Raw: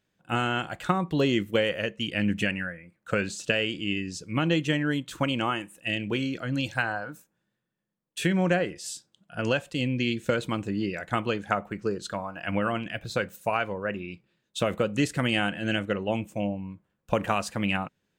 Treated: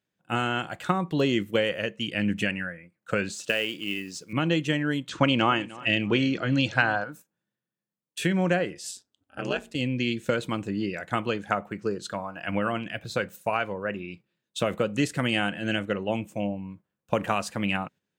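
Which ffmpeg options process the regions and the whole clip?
-filter_complex "[0:a]asettb=1/sr,asplit=3[a][b][c];[a]atrim=end=3.334[d];[b]atrim=start=3.33:end=4.33,asetpts=PTS-STARTPTS,afade=t=in:d=0.004:c=qsin,afade=t=out:st=0.996:d=0.004:c=qsin,highpass=f=310:p=1,acrusher=bits=5:mode=log:mix=0:aa=0.000001[e];[c]atrim=start=4.326[f];[d][e]acrossfade=d=0.004:c1=hsin:c2=qsin[g];[g][f]acrossfade=d=0.004:c1=qsin:c2=hsin,asettb=1/sr,asplit=3[h][i][j];[h]atrim=end=5.094[k];[i]atrim=start=5.09:end=7.04,asetpts=PTS-STARTPTS,afade=t=in:d=0.004:c=qsin,afade=t=out:st=1.946:d=0.004:c=qsin,lowpass=f=6.5k:w=0.5412,lowpass=f=6.5k:w=1.3066,acontrast=26,aecho=1:1:302|604|906:0.1|0.035|0.0123,atrim=end_sample=85995[l];[j]atrim=start=7.036[m];[k][l]acrossfade=d=0.004:c1=hsin:c2=qsin[n];[n][m]acrossfade=d=0.004:c1=qsin:c2=hsin,asettb=1/sr,asplit=3[o][p][q];[o]atrim=end=8.914[r];[p]atrim=start=8.91:end=9.75,asetpts=PTS-STARTPTS,afade=t=in:d=0.004:c=qsin,afade=t=out:st=0.836:d=0.004:c=qsin,bandreject=f=67.49:t=h:w=4,bandreject=f=134.98:t=h:w=4,bandreject=f=202.47:t=h:w=4,bandreject=f=269.96:t=h:w=4,bandreject=f=337.45:t=h:w=4,bandreject=f=404.94:t=h:w=4,aeval=exprs='val(0)*sin(2*PI*94*n/s)':c=same[s];[q]atrim=start=9.746[t];[r][s]acrossfade=d=0.004:c1=hsin:c2=qsin[u];[u][t]acrossfade=d=0.004:c1=qsin:c2=hsin,highpass=90,agate=range=-7dB:threshold=-47dB:ratio=16:detection=peak"

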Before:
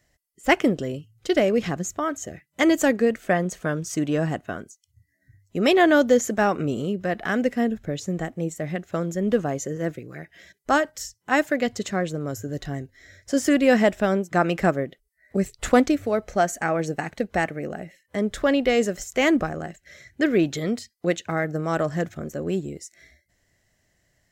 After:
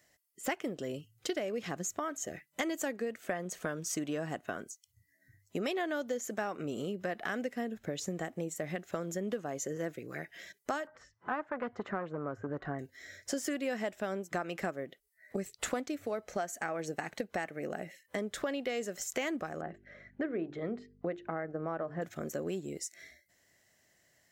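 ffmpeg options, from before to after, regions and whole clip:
-filter_complex "[0:a]asettb=1/sr,asplit=3[a][b][c];[a]atrim=end=10.874[d];[b]atrim=start=10.87:end=12.79,asetpts=PTS-STARTPTS,afade=t=in:d=0.004:c=qsin,afade=t=out:st=1.916:d=0.004:c=qsin,acompressor=mode=upward:threshold=-37dB:ratio=2.5:attack=3.2:release=140:knee=2.83:detection=peak,aeval=exprs='clip(val(0),-1,0.0501)':c=same,lowpass=f=1.3k:t=q:w=1.9[e];[c]atrim=start=12.786[f];[d][e]acrossfade=d=0.004:c1=hsin:c2=qsin[g];[g][f]acrossfade=d=0.004:c1=qsin:c2=hsin,asettb=1/sr,asplit=3[h][i][j];[h]atrim=end=19.614[k];[i]atrim=start=19.61:end=22.02,asetpts=PTS-STARTPTS,afade=t=in:d=0.004:c=qsin,afade=t=out:st=2.406:d=0.004:c=qsin,lowpass=1.4k,bandreject=f=50:t=h:w=6,bandreject=f=100:t=h:w=6,bandreject=f=150:t=h:w=6,bandreject=f=200:t=h:w=6,bandreject=f=250:t=h:w=6,bandreject=f=300:t=h:w=6,bandreject=f=350:t=h:w=6,bandreject=f=400:t=h:w=6,bandreject=f=450:t=h:w=6,aeval=exprs='val(0)+0.00282*(sin(2*PI*50*n/s)+sin(2*PI*2*50*n/s)/2+sin(2*PI*3*50*n/s)/3+sin(2*PI*4*50*n/s)/4+sin(2*PI*5*50*n/s)/5)':c=same[l];[j]atrim=start=22.016[m];[k][l]acrossfade=d=0.004:c1=hsin:c2=qsin[n];[n][m]acrossfade=d=0.004:c1=qsin:c2=hsin,highpass=f=310:p=1,highshelf=f=12k:g=6,acompressor=threshold=-33dB:ratio=6"

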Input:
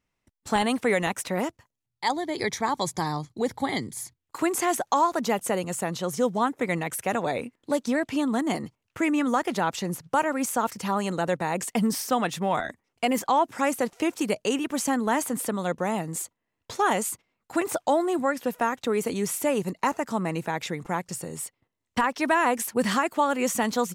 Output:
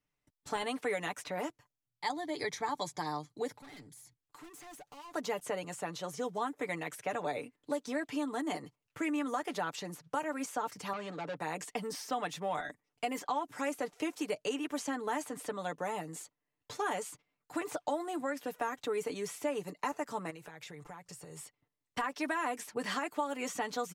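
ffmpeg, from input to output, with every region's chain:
-filter_complex "[0:a]asettb=1/sr,asplit=3[a][b][c];[a]atrim=end=3.544[d];[b]atrim=start=3.54:end=5.14,asetpts=PTS-STARTPTS,afade=t=in:d=0.004:c=qsin,afade=t=out:st=1.596:d=0.004:c=qsin,volume=31.5dB,asoftclip=hard,volume=-31.5dB,acompressor=threshold=-43dB:ratio=10:attack=3.2:release=140:knee=1:detection=peak[e];[c]atrim=start=5.136[f];[d][e]acrossfade=d=0.004:c1=hsin:c2=qsin[g];[g][f]acrossfade=d=0.004:c1=qsin:c2=hsin,asettb=1/sr,asplit=3[h][i][j];[h]atrim=end=10.934[k];[i]atrim=start=10.93:end=11.37,asetpts=PTS-STARTPTS,afade=t=in:d=0.004:c=qsin,afade=t=out:st=0.436:d=0.004:c=qsin,asoftclip=type=hard:threshold=-26dB,highpass=120,lowpass=4.1k[l];[j]atrim=start=11.366[m];[k][l]acrossfade=d=0.004:c1=hsin:c2=qsin[n];[n][m]acrossfade=d=0.004:c1=qsin:c2=hsin,asettb=1/sr,asplit=3[o][p][q];[o]atrim=end=20.304[r];[p]atrim=start=20.3:end=21.38,asetpts=PTS-STARTPTS,afade=t=in:d=0.004:c=qsin,afade=t=out:st=1.076:d=0.004:c=qsin,equalizer=f=240:w=2.2:g=-10,acompressor=threshold=-36dB:ratio=8:attack=3.2:release=140:knee=1:detection=peak[s];[q]atrim=start=21.376[t];[r][s]acrossfade=d=0.004:c1=hsin:c2=qsin[u];[u][t]acrossfade=d=0.004:c1=qsin:c2=hsin,aecho=1:1:6.8:0.62,acrossover=split=270|6500[v][w][x];[v]acompressor=threshold=-43dB:ratio=4[y];[w]acompressor=threshold=-22dB:ratio=4[z];[x]acompressor=threshold=-45dB:ratio=4[aa];[y][z][aa]amix=inputs=3:normalize=0,volume=-8.5dB"

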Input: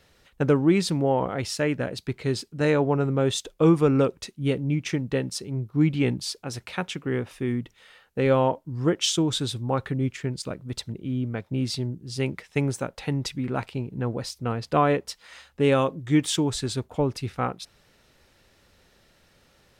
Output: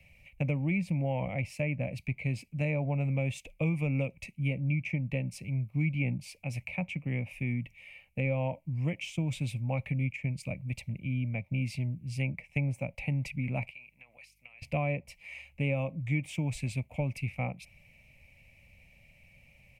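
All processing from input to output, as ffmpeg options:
-filter_complex "[0:a]asettb=1/sr,asplit=3[a][b][c];[a]atrim=end=13.714[d];[b]atrim=start=13.71:end=14.62,asetpts=PTS-STARTPTS,afade=t=in:d=0.004:c=qsin,afade=t=out:st=0.906:d=0.004:c=qsin,highpass=1.4k,acompressor=threshold=-47dB:ratio=10:attack=3.2:release=140:knee=1:detection=peak,aeval=exprs='val(0)+0.000141*(sin(2*PI*50*n/s)+sin(2*PI*2*50*n/s)/2+sin(2*PI*3*50*n/s)/3+sin(2*PI*4*50*n/s)/4+sin(2*PI*5*50*n/s)/5)':c=same[e];[c]atrim=start=14.616[f];[d][e]acrossfade=d=0.004:c1=hsin:c2=qsin[g];[g][f]acrossfade=d=0.004:c1=qsin:c2=hsin,firequalizer=gain_entry='entry(140,0);entry(400,-25);entry(570,-7);entry(1500,-30);entry(2300,10);entry(3500,-19);entry(11000,-9)':delay=0.05:min_phase=1,acrossover=split=170|1400[h][i][j];[h]acompressor=threshold=-41dB:ratio=4[k];[i]acompressor=threshold=-34dB:ratio=4[l];[j]acompressor=threshold=-46dB:ratio=4[m];[k][l][m]amix=inputs=3:normalize=0,volume=4dB"

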